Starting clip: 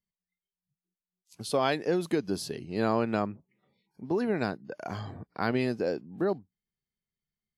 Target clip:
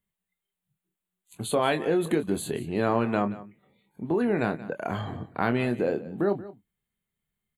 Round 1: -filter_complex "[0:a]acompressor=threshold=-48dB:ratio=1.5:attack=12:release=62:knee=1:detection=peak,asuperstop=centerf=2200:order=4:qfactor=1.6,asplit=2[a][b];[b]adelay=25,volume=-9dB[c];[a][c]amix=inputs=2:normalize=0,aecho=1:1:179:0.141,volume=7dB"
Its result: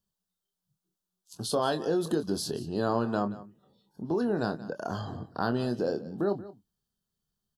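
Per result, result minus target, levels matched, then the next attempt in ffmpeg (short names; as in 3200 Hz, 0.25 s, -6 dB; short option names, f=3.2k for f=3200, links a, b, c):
4000 Hz band +4.0 dB; compressor: peak gain reduction +3 dB
-filter_complex "[0:a]acompressor=threshold=-48dB:ratio=1.5:attack=12:release=62:knee=1:detection=peak,asuperstop=centerf=5300:order=4:qfactor=1.6,asplit=2[a][b];[b]adelay=25,volume=-9dB[c];[a][c]amix=inputs=2:normalize=0,aecho=1:1:179:0.141,volume=7dB"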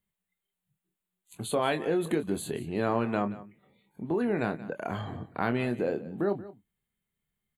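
compressor: peak gain reduction +3 dB
-filter_complex "[0:a]acompressor=threshold=-38.5dB:ratio=1.5:attack=12:release=62:knee=1:detection=peak,asuperstop=centerf=5300:order=4:qfactor=1.6,asplit=2[a][b];[b]adelay=25,volume=-9dB[c];[a][c]amix=inputs=2:normalize=0,aecho=1:1:179:0.141,volume=7dB"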